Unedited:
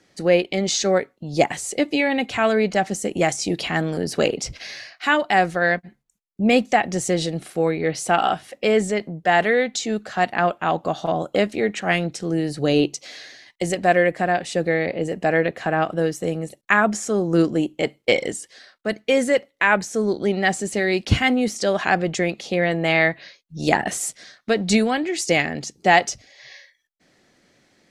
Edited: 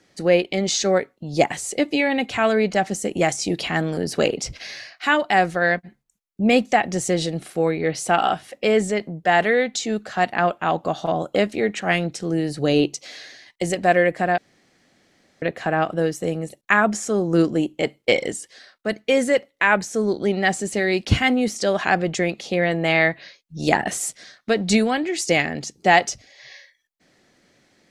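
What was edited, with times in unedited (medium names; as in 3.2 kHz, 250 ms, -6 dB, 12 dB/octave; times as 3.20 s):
14.38–15.42 s: room tone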